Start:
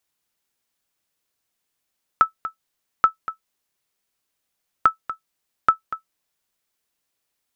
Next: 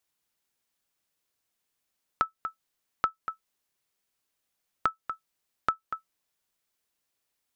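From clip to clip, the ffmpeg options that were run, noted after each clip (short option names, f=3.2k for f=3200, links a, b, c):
-af "acompressor=threshold=-26dB:ratio=2,volume=-3dB"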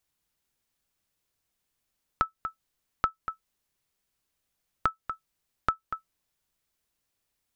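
-af "lowshelf=f=140:g=12"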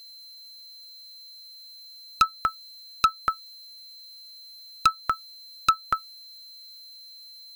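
-af "aemphasis=mode=production:type=75kf,aeval=exprs='0.119*(abs(mod(val(0)/0.119+3,4)-2)-1)':c=same,aeval=exprs='val(0)+0.00224*sin(2*PI*4100*n/s)':c=same,volume=9dB"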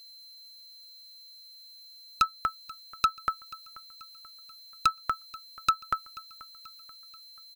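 -af "aecho=1:1:484|968|1452|1936:0.0944|0.0453|0.0218|0.0104,volume=-4dB"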